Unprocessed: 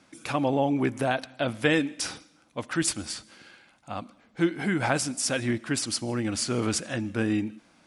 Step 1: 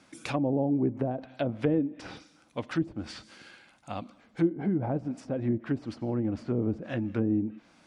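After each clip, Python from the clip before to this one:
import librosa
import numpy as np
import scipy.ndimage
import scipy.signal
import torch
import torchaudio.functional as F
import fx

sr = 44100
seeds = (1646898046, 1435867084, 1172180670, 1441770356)

y = fx.dynamic_eq(x, sr, hz=1400.0, q=1.1, threshold_db=-43.0, ratio=4.0, max_db=-6)
y = fx.env_lowpass_down(y, sr, base_hz=530.0, full_db=-23.5)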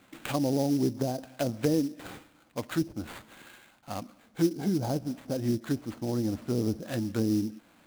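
y = fx.sample_hold(x, sr, seeds[0], rate_hz=5500.0, jitter_pct=20)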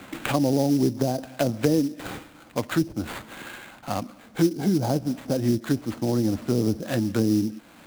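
y = fx.band_squash(x, sr, depth_pct=40)
y = y * 10.0 ** (5.5 / 20.0)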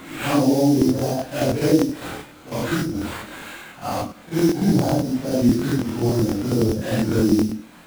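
y = fx.phase_scramble(x, sr, seeds[1], window_ms=200)
y = fx.buffer_crackle(y, sr, first_s=0.77, period_s=0.1, block=1024, kind='repeat')
y = y * 10.0 ** (4.0 / 20.0)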